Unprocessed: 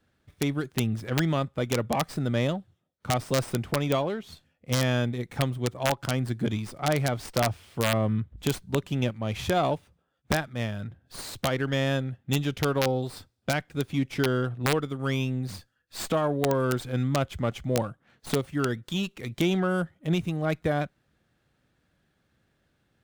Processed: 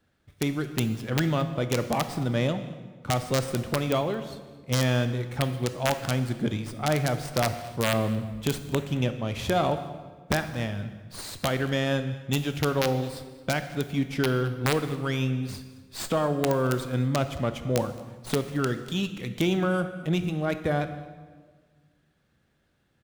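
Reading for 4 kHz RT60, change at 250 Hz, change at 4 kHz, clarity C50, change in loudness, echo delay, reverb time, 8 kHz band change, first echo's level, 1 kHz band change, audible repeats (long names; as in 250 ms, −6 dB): 1.1 s, +0.5 dB, +0.5 dB, 11.0 dB, +0.5 dB, 220 ms, 1.5 s, +0.5 dB, −21.0 dB, +0.5 dB, 1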